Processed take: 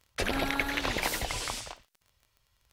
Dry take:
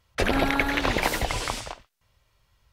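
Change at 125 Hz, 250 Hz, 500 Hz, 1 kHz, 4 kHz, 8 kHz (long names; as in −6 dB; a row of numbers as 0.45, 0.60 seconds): −8.0, −8.0, −7.5, −7.0, −3.0, −1.5 decibels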